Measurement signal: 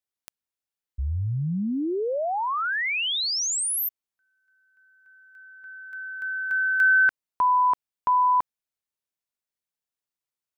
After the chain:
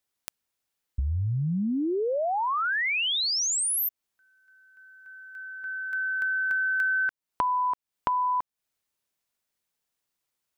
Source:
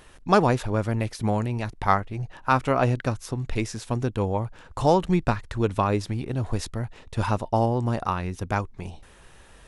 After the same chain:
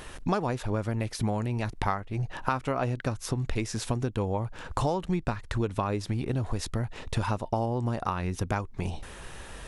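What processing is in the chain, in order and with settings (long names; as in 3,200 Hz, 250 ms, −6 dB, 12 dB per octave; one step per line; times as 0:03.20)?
downward compressor 6 to 1, threshold −34 dBFS
level +8 dB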